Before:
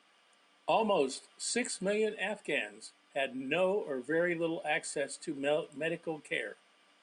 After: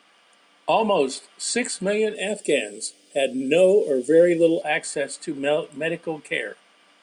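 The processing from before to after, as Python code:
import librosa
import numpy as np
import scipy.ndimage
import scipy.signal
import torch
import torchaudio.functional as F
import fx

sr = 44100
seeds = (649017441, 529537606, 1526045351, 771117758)

y = fx.curve_eq(x, sr, hz=(130.0, 510.0, 980.0, 6300.0), db=(0, 8, -15, 11), at=(2.15, 4.62))
y = y * 10.0 ** (9.0 / 20.0)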